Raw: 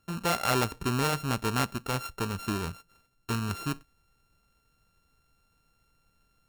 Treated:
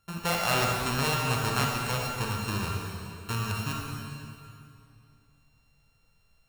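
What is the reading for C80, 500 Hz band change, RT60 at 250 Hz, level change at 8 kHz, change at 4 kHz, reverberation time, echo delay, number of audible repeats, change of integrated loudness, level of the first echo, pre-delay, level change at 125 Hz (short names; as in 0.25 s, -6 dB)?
1.5 dB, 0.0 dB, 2.9 s, +2.5 dB, +3.5 dB, 2.6 s, none, none, +1.0 dB, none, 32 ms, +2.0 dB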